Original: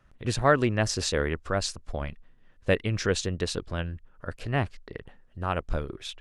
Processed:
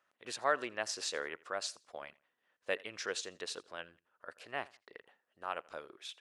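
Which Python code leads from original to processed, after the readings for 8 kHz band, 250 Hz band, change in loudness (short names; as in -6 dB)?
-8.0 dB, -21.0 dB, -11.0 dB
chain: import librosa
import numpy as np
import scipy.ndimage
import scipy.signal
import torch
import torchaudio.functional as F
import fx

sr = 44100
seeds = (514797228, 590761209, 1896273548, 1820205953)

p1 = scipy.signal.sosfilt(scipy.signal.butter(2, 570.0, 'highpass', fs=sr, output='sos'), x)
p2 = p1 + fx.echo_feedback(p1, sr, ms=83, feedback_pct=27, wet_db=-23, dry=0)
y = F.gain(torch.from_numpy(p2), -8.0).numpy()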